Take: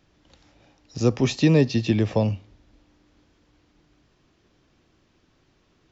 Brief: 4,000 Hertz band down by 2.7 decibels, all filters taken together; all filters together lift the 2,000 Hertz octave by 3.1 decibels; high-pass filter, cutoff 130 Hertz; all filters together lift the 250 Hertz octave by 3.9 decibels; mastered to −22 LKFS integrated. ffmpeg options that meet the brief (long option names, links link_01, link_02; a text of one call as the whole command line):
ffmpeg -i in.wav -af "highpass=130,equalizer=frequency=250:width_type=o:gain=5.5,equalizer=frequency=2000:width_type=o:gain=5.5,equalizer=frequency=4000:width_type=o:gain=-5,volume=-2.5dB" out.wav